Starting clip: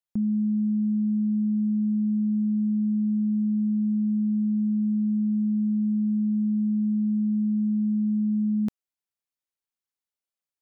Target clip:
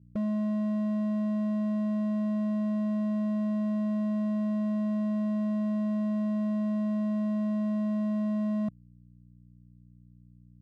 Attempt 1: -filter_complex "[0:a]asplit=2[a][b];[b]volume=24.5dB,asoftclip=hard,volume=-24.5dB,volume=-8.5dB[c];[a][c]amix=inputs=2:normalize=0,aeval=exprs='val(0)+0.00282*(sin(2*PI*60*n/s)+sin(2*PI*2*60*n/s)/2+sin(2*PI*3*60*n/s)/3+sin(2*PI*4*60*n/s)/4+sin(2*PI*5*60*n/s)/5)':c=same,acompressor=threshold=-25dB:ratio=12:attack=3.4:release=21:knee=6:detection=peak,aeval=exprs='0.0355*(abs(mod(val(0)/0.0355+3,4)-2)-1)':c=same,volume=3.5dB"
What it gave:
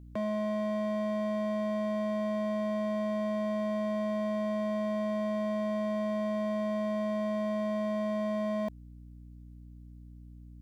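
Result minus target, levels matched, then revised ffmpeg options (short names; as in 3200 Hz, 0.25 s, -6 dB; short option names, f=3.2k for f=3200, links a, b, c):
125 Hz band -3.0 dB
-filter_complex "[0:a]asplit=2[a][b];[b]volume=24.5dB,asoftclip=hard,volume=-24.5dB,volume=-8.5dB[c];[a][c]amix=inputs=2:normalize=0,aeval=exprs='val(0)+0.00282*(sin(2*PI*60*n/s)+sin(2*PI*2*60*n/s)/2+sin(2*PI*3*60*n/s)/3+sin(2*PI*4*60*n/s)/4+sin(2*PI*5*60*n/s)/5)':c=same,acompressor=threshold=-25dB:ratio=12:attack=3.4:release=21:knee=6:detection=peak,bandpass=f=150:t=q:w=1.6:csg=0,aeval=exprs='0.0355*(abs(mod(val(0)/0.0355+3,4)-2)-1)':c=same,volume=3.5dB"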